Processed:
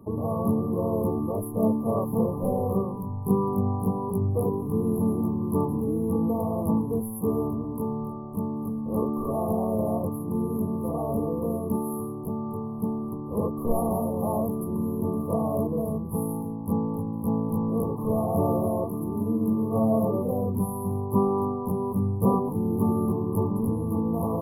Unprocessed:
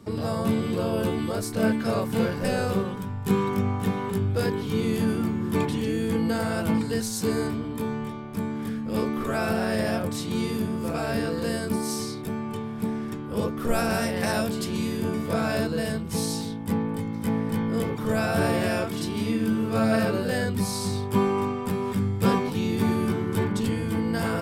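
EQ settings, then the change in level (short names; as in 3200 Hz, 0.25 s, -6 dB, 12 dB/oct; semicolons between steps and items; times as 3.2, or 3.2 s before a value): brick-wall FIR band-stop 1200–10000 Hz; 0.0 dB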